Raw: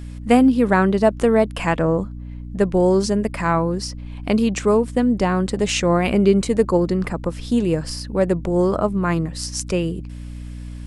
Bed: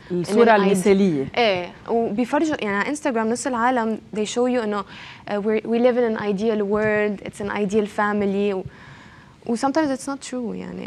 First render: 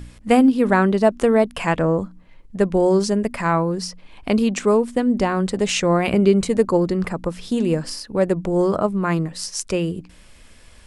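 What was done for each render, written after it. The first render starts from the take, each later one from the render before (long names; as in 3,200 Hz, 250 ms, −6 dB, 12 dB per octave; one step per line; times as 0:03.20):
hum removal 60 Hz, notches 5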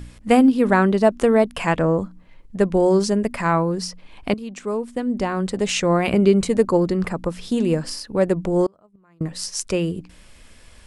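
0:04.34–0:06.45: fade in equal-power, from −17.5 dB
0:08.66–0:09.21: gate with flip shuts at −16 dBFS, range −35 dB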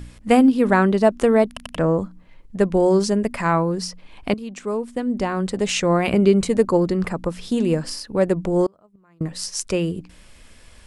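0:01.48: stutter in place 0.09 s, 3 plays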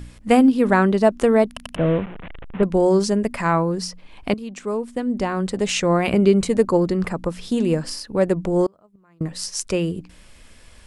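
0:01.76–0:02.63: linear delta modulator 16 kbit/s, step −29 dBFS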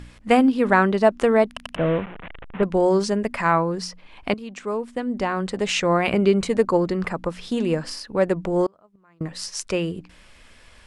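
low-pass filter 2,700 Hz 6 dB per octave
tilt shelving filter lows −4.5 dB, about 640 Hz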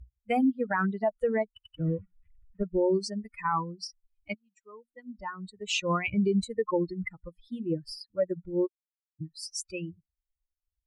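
spectral dynamics exaggerated over time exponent 3
brickwall limiter −18 dBFS, peak gain reduction 8.5 dB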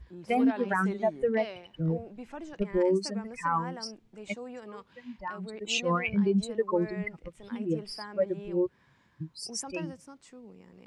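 mix in bed −22 dB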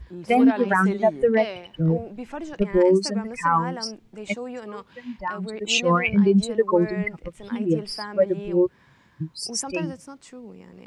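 level +8 dB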